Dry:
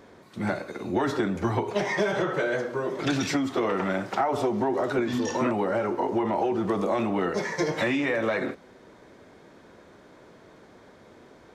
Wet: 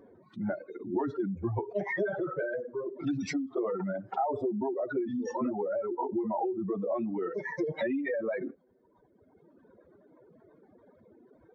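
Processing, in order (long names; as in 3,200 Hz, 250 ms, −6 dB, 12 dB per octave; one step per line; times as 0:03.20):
expanding power law on the bin magnitudes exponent 2.1
reverb reduction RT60 1.9 s
level −4 dB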